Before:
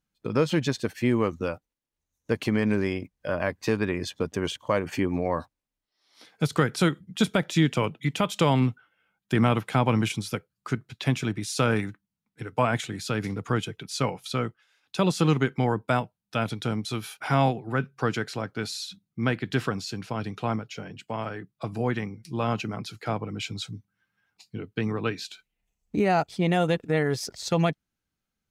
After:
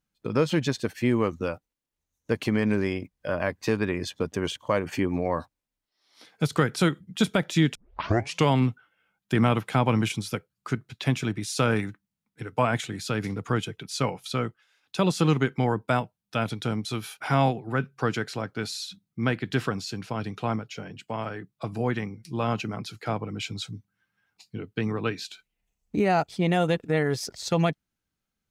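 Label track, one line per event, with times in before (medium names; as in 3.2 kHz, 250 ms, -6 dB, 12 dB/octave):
7.750000	7.750000	tape start 0.73 s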